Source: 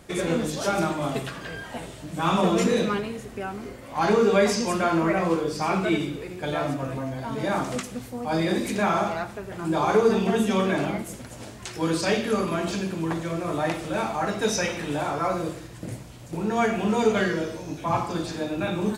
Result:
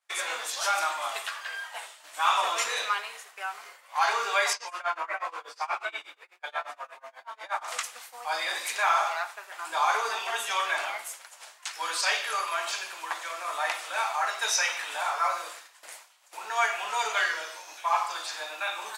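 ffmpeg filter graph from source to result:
-filter_complex "[0:a]asettb=1/sr,asplit=3[a][b][c];[a]atrim=end=4.534[d];[b]atrim=start=4.53:end=7.68,asetpts=PTS-STARTPTS,afade=t=in:d=0.004:c=qsin,afade=t=out:st=3.146:d=0.004:c=qsin,highpass=240,highshelf=f=4.2k:g=-11.5,tremolo=f=8.3:d=0.95[e];[c]atrim=start=7.676[f];[d][e]acrossfade=d=0.004:c1=hsin:c2=qsin[g];[g][f]acrossfade=d=0.004:c1=qsin:c2=hsin,agate=range=-33dB:threshold=-34dB:ratio=3:detection=peak,highpass=f=870:w=0.5412,highpass=f=870:w=1.3066,volume=3dB"

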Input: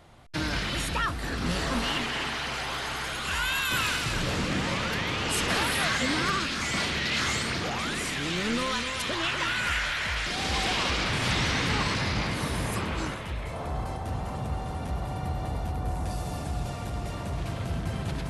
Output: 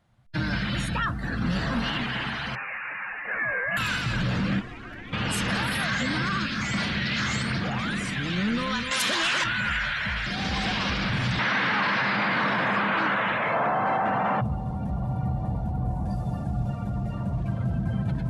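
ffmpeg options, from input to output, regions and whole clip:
-filter_complex "[0:a]asettb=1/sr,asplit=3[a][b][c];[a]atrim=end=2.554[d];[b]atrim=start=2.55:end=3.77,asetpts=PTS-STARTPTS,afade=t=in:d=0.004:c=qsin,afade=t=out:st=1.216:d=0.004:c=qsin,highpass=450,lowpass=f=2.7k:t=q:w=0.5098,lowpass=f=2.7k:t=q:w=0.6013,lowpass=f=2.7k:t=q:w=0.9,lowpass=f=2.7k:t=q:w=2.563,afreqshift=-3200[e];[c]atrim=start=3.766[f];[d][e]acrossfade=d=0.004:c1=hsin:c2=qsin[g];[g][f]acrossfade=d=0.004:c1=qsin:c2=hsin,asettb=1/sr,asplit=3[h][i][j];[h]atrim=end=4.594[k];[i]atrim=start=4.59:end=5.13,asetpts=PTS-STARTPTS,afade=t=in:d=0.004:c=qsin,afade=t=out:st=0.536:d=0.004:c=qsin,acrossover=split=280|910[l][m][n];[l]acompressor=threshold=-38dB:ratio=4[o];[m]acompressor=threshold=-43dB:ratio=4[p];[n]acompressor=threshold=-36dB:ratio=4[q];[o][p][q]amix=inputs=3:normalize=0,aeval=exprs='val(0)*sin(2*PI*170*n/s)':c=same[r];[j]atrim=start=5.126[s];[k][r]acrossfade=d=0.004:c1=hsin:c2=qsin[t];[t][s]acrossfade=d=0.004:c1=qsin:c2=hsin,asettb=1/sr,asplit=3[u][v][w];[u]atrim=end=8.914[x];[v]atrim=start=8.91:end=9.44,asetpts=PTS-STARTPTS,afade=t=in:d=0.004:c=qsin,afade=t=out:st=0.526:d=0.004:c=qsin,highpass=260,highshelf=f=3.3k:g=7,aeval=exprs='0.2*sin(PI/2*1.78*val(0)/0.2)':c=same[y];[w]atrim=start=9.436[z];[x][y]acrossfade=d=0.004:c1=hsin:c2=qsin[aa];[aa][z]acrossfade=d=0.004:c1=qsin:c2=hsin,asettb=1/sr,asplit=3[ab][ac][ad];[ab]atrim=end=11.394[ae];[ac]atrim=start=11.39:end=14.41,asetpts=PTS-STARTPTS,afade=t=in:d=0.004:c=qsin,afade=t=out:st=3.016:d=0.004:c=qsin,equalizer=f=1.5k:w=0.49:g=5.5,asplit=2[af][ag];[ag]highpass=f=720:p=1,volume=23dB,asoftclip=type=tanh:threshold=-12dB[ah];[af][ah]amix=inputs=2:normalize=0,lowpass=f=1.5k:p=1,volume=-6dB,highpass=180,lowpass=7.6k[ai];[ad]atrim=start=14.406[aj];[ae][ai]acrossfade=d=0.004:c1=hsin:c2=qsin[ak];[ak][aj]acrossfade=d=0.004:c1=qsin:c2=hsin,afftdn=nr=16:nf=-37,equalizer=f=125:t=o:w=0.33:g=10,equalizer=f=200:t=o:w=0.33:g=11,equalizer=f=400:t=o:w=0.33:g=-6,equalizer=f=1.6k:t=o:w=0.33:g=5,alimiter=limit=-18dB:level=0:latency=1:release=16"

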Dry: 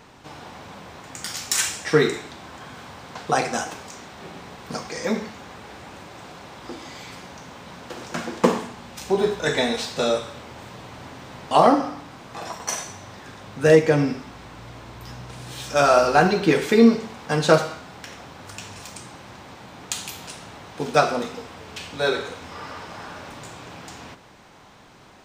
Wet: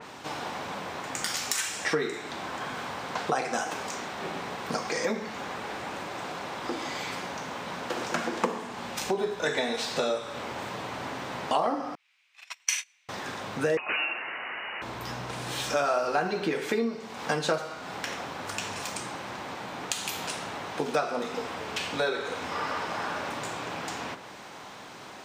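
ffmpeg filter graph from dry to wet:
-filter_complex "[0:a]asettb=1/sr,asplit=3[a][b][c];[a]atrim=end=11.954[d];[b]atrim=start=11.95:end=13.09,asetpts=PTS-STARTPTS,afade=t=in:d=0.004:c=qsin,afade=t=out:st=1.136:d=0.004:c=qsin,agate=range=-31dB:threshold=-31dB:ratio=16:release=100:detection=peak,highpass=f=2.4k:t=q:w=3.9[e];[c]atrim=start=13.086[f];[d][e]acrossfade=d=0.004:c1=hsin:c2=qsin[g];[g][f]acrossfade=d=0.004:c1=qsin:c2=hsin,asettb=1/sr,asplit=3[h][i][j];[h]atrim=end=13.774[k];[i]atrim=start=13.77:end=14.82,asetpts=PTS-STARTPTS,afade=t=in:d=0.004:c=qsin,afade=t=out:st=1.046:d=0.004:c=qsin,tiltshelf=f=760:g=-8,aeval=exprs='(mod(4.47*val(0)+1,2)-1)/4.47':c=same,lowpass=f=2.6k:t=q:w=0.5098,lowpass=f=2.6k:t=q:w=0.6013,lowpass=f=2.6k:t=q:w=0.9,lowpass=f=2.6k:t=q:w=2.563,afreqshift=-3000[l];[j]atrim=start=14.816[m];[k][l]acrossfade=d=0.004:c1=hsin:c2=qsin[n];[n][m]acrossfade=d=0.004:c1=qsin:c2=hsin,acompressor=threshold=-31dB:ratio=5,highpass=f=300:p=1,adynamicequalizer=threshold=0.00282:dfrequency=3100:dqfactor=0.7:tfrequency=3100:tqfactor=0.7:attack=5:release=100:ratio=0.375:range=2:mode=cutabove:tftype=highshelf,volume=6.5dB"

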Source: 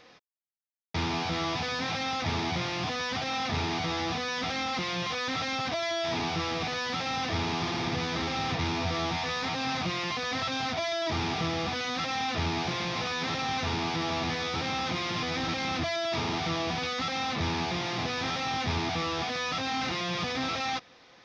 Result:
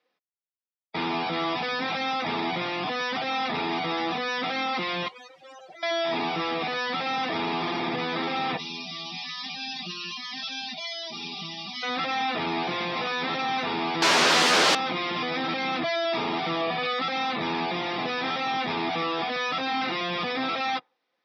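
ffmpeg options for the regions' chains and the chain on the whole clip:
-filter_complex "[0:a]asettb=1/sr,asplit=3[a][b][c];[a]atrim=end=5.084[d];[b]atrim=start=5.08:end=5.83,asetpts=PTS-STARTPTS,afade=t=in:d=0.004:c=qsin,afade=t=out:st=0.746:d=0.004:c=qsin,aeval=exprs='0.0133*(abs(mod(val(0)/0.0133+3,4)-2)-1)':c=same,aeval=exprs='val(0)+0.000708*(sin(2*PI*60*n/s)+sin(2*PI*2*60*n/s)/2+sin(2*PI*3*60*n/s)/3+sin(2*PI*4*60*n/s)/4+sin(2*PI*5*60*n/s)/5)':c=same[e];[c]atrim=start=5.826[f];[d][e]acrossfade=d=0.004:c1=hsin:c2=qsin[g];[g][f]acrossfade=d=0.004:c1=qsin:c2=hsin,asettb=1/sr,asplit=3[h][i][j];[h]atrim=end=8.574[k];[i]atrim=start=8.57:end=11.83,asetpts=PTS-STARTPTS,afade=t=in:d=0.004:c=qsin,afade=t=out:st=3.256:d=0.004:c=qsin,equalizer=f=110:t=o:w=1.7:g=-13.5,aecho=1:1:5:0.92,atrim=end_sample=143766,acrossover=split=220|3000[l][m][n];[m]acompressor=threshold=-44dB:ratio=6:attack=3.2:release=140:knee=2.83:detection=peak[o];[l][o][n]amix=inputs=3:normalize=0[p];[j]atrim=start=11.826[q];[k][p]acrossfade=d=0.004:c1=hsin:c2=qsin[r];[r][q]acrossfade=d=0.004:c1=qsin:c2=hsin,asettb=1/sr,asplit=3[s][t][u];[s]atrim=end=14.024[v];[t]atrim=start=14.02:end=14.75,asetpts=PTS-STARTPTS,afade=t=in:d=0.004:c=qsin,afade=t=out:st=0.726:d=0.004:c=qsin,equalizer=f=2.3k:w=4.3:g=-4,aecho=1:1:7.3:0.65,atrim=end_sample=32193,aeval=exprs='0.112*sin(PI/2*6.31*val(0)/0.112)':c=same[w];[u]atrim=start=14.746[x];[v][w]acrossfade=d=0.004:c1=hsin:c2=qsin[y];[y][x]acrossfade=d=0.004:c1=qsin:c2=hsin,asettb=1/sr,asplit=3[z][aa][ab];[z]atrim=end=16.614[ac];[aa]atrim=start=16.61:end=17.01,asetpts=PTS-STARTPTS,afade=t=in:d=0.004:c=qsin,afade=t=out:st=0.396:d=0.004:c=qsin,equalizer=f=6k:w=2.8:g=-3,aecho=1:1:1.7:0.37,atrim=end_sample=17640[ad];[ab]atrim=start=17.006[ae];[ac][ad]acrossfade=d=0.004:c1=hsin:c2=qsin[af];[af][ae]acrossfade=d=0.004:c1=qsin:c2=hsin,afftdn=nr=26:nf=-38,highpass=f=130:w=0.5412,highpass=f=130:w=1.3066,acrossover=split=200 5800:gain=0.2 1 0.0708[ag][ah][ai];[ag][ah][ai]amix=inputs=3:normalize=0,volume=4.5dB"

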